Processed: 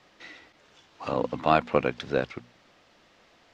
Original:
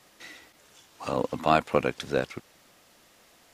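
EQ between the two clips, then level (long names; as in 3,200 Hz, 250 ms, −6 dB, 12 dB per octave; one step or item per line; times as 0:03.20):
high-frequency loss of the air 200 metres
high-shelf EQ 3,900 Hz +6 dB
mains-hum notches 60/120/180/240 Hz
+1.0 dB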